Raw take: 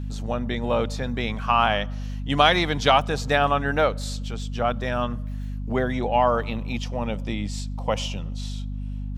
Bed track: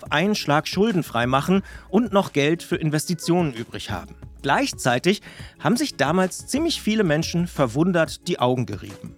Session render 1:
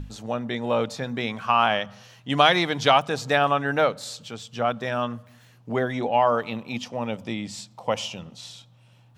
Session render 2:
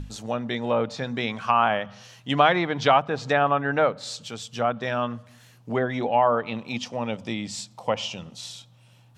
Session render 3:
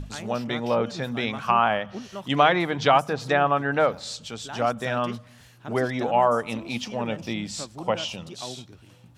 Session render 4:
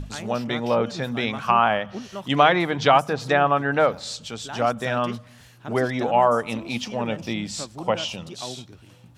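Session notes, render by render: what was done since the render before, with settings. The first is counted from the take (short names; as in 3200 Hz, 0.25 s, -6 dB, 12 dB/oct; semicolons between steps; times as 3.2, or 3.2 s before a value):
notches 50/100/150/200/250 Hz
treble ducked by the level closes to 1900 Hz, closed at -19 dBFS; high shelf 4800 Hz +7 dB
add bed track -18.5 dB
gain +2 dB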